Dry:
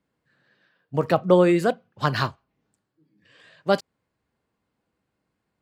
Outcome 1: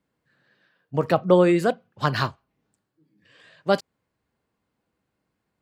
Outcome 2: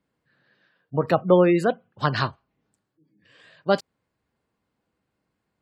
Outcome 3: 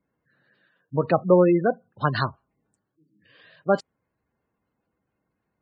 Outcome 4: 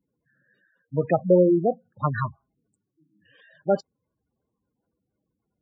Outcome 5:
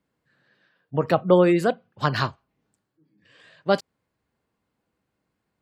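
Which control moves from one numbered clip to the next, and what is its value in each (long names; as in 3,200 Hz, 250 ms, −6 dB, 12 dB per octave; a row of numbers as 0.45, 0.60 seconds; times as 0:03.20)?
gate on every frequency bin, under each frame's peak: −60, −35, −20, −10, −45 decibels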